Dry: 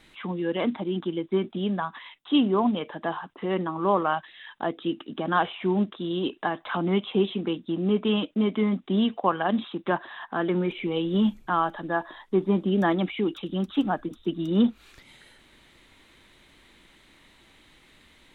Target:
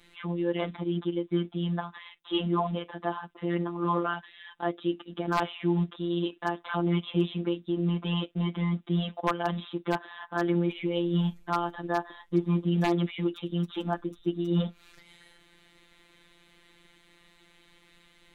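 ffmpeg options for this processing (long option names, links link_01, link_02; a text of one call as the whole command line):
ffmpeg -i in.wav -af "afftfilt=real='hypot(re,im)*cos(PI*b)':imag='0':win_size=1024:overlap=0.75,aeval=exprs='0.2*(abs(mod(val(0)/0.2+3,4)-2)-1)':channel_layout=same" out.wav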